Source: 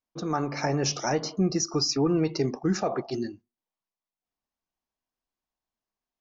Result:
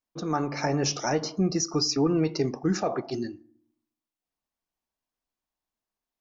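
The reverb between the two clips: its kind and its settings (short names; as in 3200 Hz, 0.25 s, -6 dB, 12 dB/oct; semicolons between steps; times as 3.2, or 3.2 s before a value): FDN reverb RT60 0.63 s, low-frequency decay 1.4×, high-frequency decay 0.55×, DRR 18.5 dB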